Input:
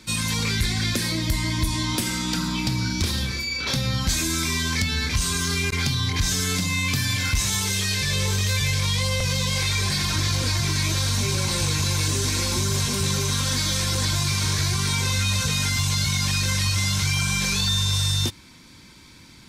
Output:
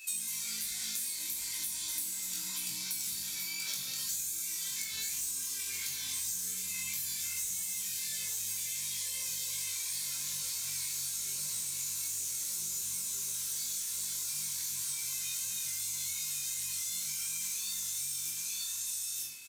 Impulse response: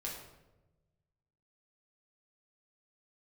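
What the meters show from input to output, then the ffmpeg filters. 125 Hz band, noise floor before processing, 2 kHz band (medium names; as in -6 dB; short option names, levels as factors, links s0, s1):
-35.5 dB, -47 dBFS, -19.0 dB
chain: -filter_complex "[0:a]aecho=1:1:928:0.473,asplit=2[s0][s1];[s1]asoftclip=type=tanh:threshold=0.0794,volume=0.631[s2];[s0][s2]amix=inputs=2:normalize=0,aexciter=amount=3.4:drive=2.8:freq=6600,aderivative,aeval=exprs='val(0)+0.0112*sin(2*PI*2600*n/s)':c=same[s3];[1:a]atrim=start_sample=2205,asetrate=52920,aresample=44100[s4];[s3][s4]afir=irnorm=-1:irlink=0,flanger=delay=20:depth=2.8:speed=2.7,acrossover=split=300[s5][s6];[s6]acompressor=threshold=0.0224:ratio=12[s7];[s5][s7]amix=inputs=2:normalize=0"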